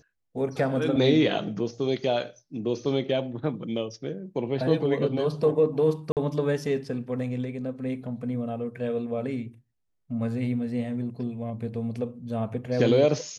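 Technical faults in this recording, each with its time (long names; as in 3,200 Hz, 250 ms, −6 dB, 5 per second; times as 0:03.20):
0:06.12–0:06.17: drop-out 48 ms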